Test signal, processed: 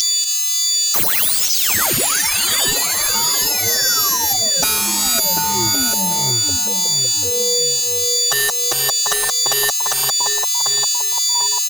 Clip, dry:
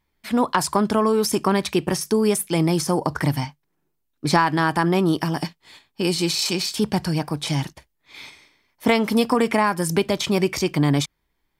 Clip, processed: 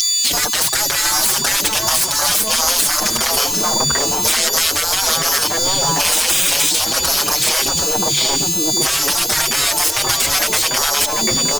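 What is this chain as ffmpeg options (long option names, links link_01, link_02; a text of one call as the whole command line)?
ffmpeg -i in.wav -filter_complex "[0:a]aeval=exprs='val(0)+0.0501*sin(2*PI*5800*n/s)':channel_layout=same,asoftclip=type=hard:threshold=-16dB,highshelf=frequency=2200:gain=-2.5,acrossover=split=230|3000[link_01][link_02][link_03];[link_02]acompressor=threshold=-23dB:ratio=3[link_04];[link_01][link_04][link_03]amix=inputs=3:normalize=0,bass=frequency=250:gain=-4,treble=frequency=4000:gain=7,afwtdn=0.0224,asoftclip=type=tanh:threshold=-23dB,asplit=2[link_05][link_06];[link_06]adelay=743,lowpass=frequency=1100:poles=1,volume=-6.5dB,asplit=2[link_07][link_08];[link_08]adelay=743,lowpass=frequency=1100:poles=1,volume=0.44,asplit=2[link_09][link_10];[link_10]adelay=743,lowpass=frequency=1100:poles=1,volume=0.44,asplit=2[link_11][link_12];[link_12]adelay=743,lowpass=frequency=1100:poles=1,volume=0.44,asplit=2[link_13][link_14];[link_14]adelay=743,lowpass=frequency=1100:poles=1,volume=0.44[link_15];[link_05][link_07][link_09][link_11][link_13][link_15]amix=inputs=6:normalize=0,afftfilt=real='re*lt(hypot(re,im),0.0501)':imag='im*lt(hypot(re,im),0.0501)':win_size=1024:overlap=0.75,acompressor=threshold=-47dB:ratio=6,alimiter=level_in=36dB:limit=-1dB:release=50:level=0:latency=1,asplit=2[link_16][link_17];[link_17]adelay=6,afreqshift=1.6[link_18];[link_16][link_18]amix=inputs=2:normalize=1" out.wav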